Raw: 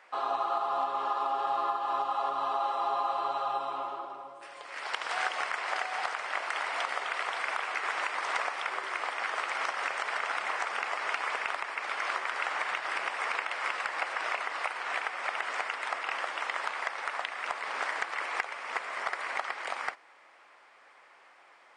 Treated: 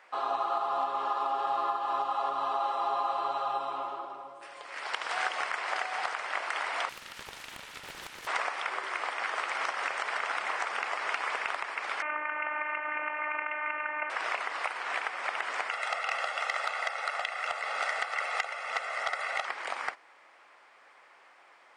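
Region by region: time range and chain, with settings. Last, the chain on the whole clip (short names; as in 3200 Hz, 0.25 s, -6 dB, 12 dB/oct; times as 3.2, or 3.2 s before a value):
6.89–8.27 pre-emphasis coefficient 0.97 + comb 2.2 ms, depth 36% + Doppler distortion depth 0.88 ms
12.02–14.1 steep low-pass 2700 Hz 72 dB/oct + robotiser 302 Hz + fast leveller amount 50%
15.71–19.45 bell 170 Hz -8.5 dB 0.89 oct + comb 1.5 ms, depth 80% + core saturation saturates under 2600 Hz
whole clip: dry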